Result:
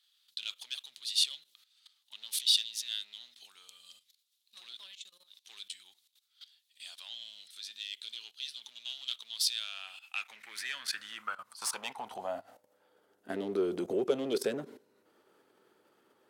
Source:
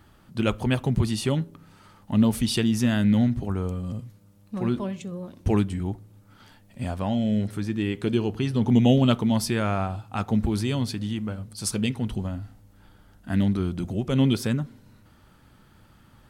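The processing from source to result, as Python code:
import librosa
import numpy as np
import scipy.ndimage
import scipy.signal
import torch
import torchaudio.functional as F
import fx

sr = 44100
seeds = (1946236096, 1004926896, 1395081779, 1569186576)

y = fx.clip_asym(x, sr, top_db=-25.0, bottom_db=-13.0)
y = fx.level_steps(y, sr, step_db=17)
y = fx.filter_sweep_highpass(y, sr, from_hz=3700.0, to_hz=410.0, start_s=9.5, end_s=13.15, q=4.5)
y = y * 10.0 ** (2.0 / 20.0)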